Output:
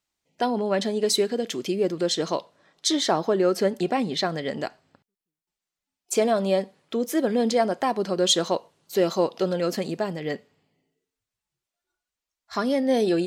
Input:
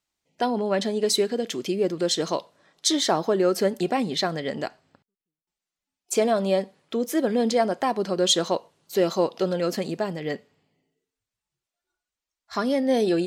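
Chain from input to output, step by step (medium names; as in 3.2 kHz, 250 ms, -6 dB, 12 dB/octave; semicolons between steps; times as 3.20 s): 2.02–4.34 s: treble shelf 8.7 kHz -7 dB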